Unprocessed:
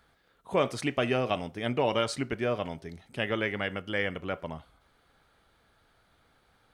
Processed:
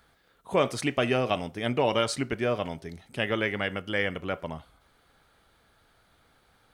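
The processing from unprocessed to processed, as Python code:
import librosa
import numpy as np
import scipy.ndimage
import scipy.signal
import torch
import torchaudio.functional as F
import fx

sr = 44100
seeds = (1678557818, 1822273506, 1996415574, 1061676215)

y = fx.high_shelf(x, sr, hz=6500.0, db=4.5)
y = F.gain(torch.from_numpy(y), 2.0).numpy()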